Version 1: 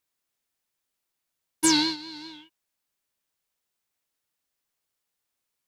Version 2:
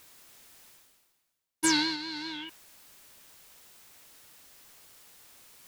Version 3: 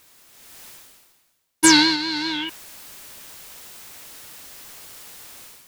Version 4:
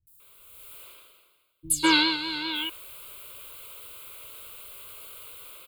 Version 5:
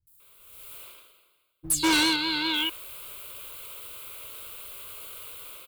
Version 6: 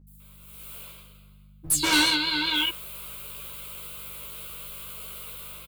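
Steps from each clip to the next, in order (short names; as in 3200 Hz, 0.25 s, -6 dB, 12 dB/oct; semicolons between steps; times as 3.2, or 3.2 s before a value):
reverse; upward compressor, threshold -25 dBFS; reverse; dynamic EQ 1700 Hz, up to +7 dB, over -47 dBFS, Q 1.4; gain -5 dB
AGC gain up to 12 dB; gain +1.5 dB
fixed phaser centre 1200 Hz, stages 8; three bands offset in time lows, highs, mids 70/200 ms, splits 170/5900 Hz
sample leveller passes 1; overloaded stage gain 19.5 dB
hum 50 Hz, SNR 21 dB; doubler 14 ms -2.5 dB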